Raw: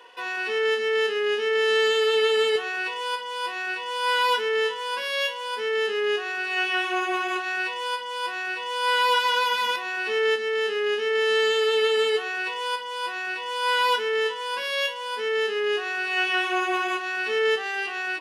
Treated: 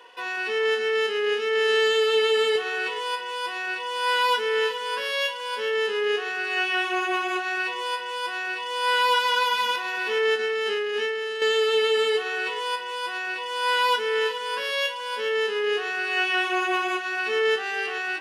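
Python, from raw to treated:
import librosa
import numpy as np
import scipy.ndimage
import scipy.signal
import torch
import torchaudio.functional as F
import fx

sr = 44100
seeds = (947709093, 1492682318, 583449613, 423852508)

y = x + 10.0 ** (-13.5 / 20.0) * np.pad(x, (int(426 * sr / 1000.0), 0))[:len(x)]
y = fx.over_compress(y, sr, threshold_db=-27.0, ratio=-1.0, at=(10.39, 11.42))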